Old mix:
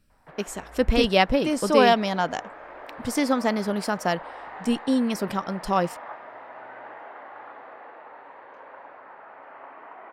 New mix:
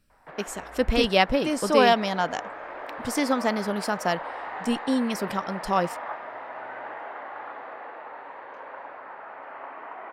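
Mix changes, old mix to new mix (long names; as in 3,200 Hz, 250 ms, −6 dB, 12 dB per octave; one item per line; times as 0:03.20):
background +5.0 dB
master: add low-shelf EQ 440 Hz −3 dB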